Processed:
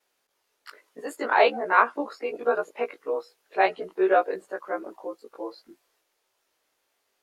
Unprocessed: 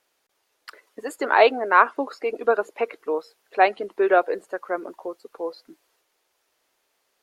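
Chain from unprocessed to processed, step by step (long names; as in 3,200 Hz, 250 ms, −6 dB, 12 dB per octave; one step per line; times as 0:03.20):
every overlapping window played backwards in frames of 42 ms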